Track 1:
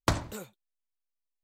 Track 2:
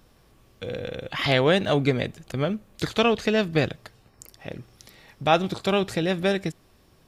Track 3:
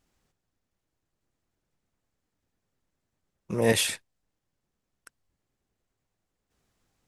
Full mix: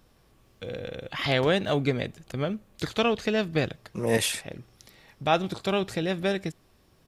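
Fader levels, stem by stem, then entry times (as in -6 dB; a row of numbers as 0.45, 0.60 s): -18.0, -3.5, -1.5 dB; 1.35, 0.00, 0.45 s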